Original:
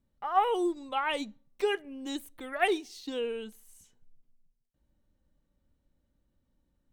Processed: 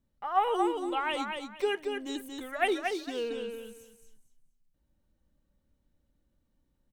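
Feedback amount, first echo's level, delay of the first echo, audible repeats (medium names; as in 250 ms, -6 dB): 23%, -5.0 dB, 230 ms, 3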